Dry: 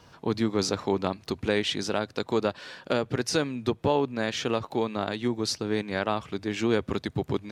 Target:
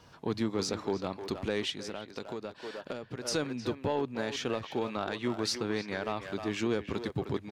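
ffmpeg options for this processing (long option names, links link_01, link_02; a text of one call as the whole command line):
ffmpeg -i in.wav -filter_complex "[0:a]asettb=1/sr,asplit=3[link_01][link_02][link_03];[link_01]atrim=end=4.894[link_04];[link_02]atrim=start=4.89:end=5.98,asetpts=PTS-STARTPTS,afade=type=in:duration=0.004:curve=qsin,afade=type=out:start_time=1.086:duration=0.004:curve=qsin,equalizer=frequency=1600:width_type=o:width=2.5:gain=5.5[link_05];[link_03]atrim=start=5.976[link_06];[link_04][link_05]acrossfade=duration=0.004:curve1=hsin:curve2=qsin[link_07];[link_07][link_06]acrossfade=duration=0.004:curve1=qsin:curve2=hsin,asoftclip=type=tanh:threshold=-14dB,asplit=2[link_08][link_09];[link_09]adelay=310,highpass=300,lowpass=3400,asoftclip=type=hard:threshold=-24dB,volume=-7dB[link_10];[link_08][link_10]amix=inputs=2:normalize=0,asplit=3[link_11][link_12][link_13];[link_11]afade=type=out:start_time=1.7:duration=0.02[link_14];[link_12]acompressor=threshold=-33dB:ratio=6,afade=type=in:start_time=1.7:duration=0.02,afade=type=out:start_time=3.24:duration=0.02[link_15];[link_13]afade=type=in:start_time=3.24:duration=0.02[link_16];[link_14][link_15][link_16]amix=inputs=3:normalize=0,alimiter=limit=-18dB:level=0:latency=1:release=322,volume=-3dB" out.wav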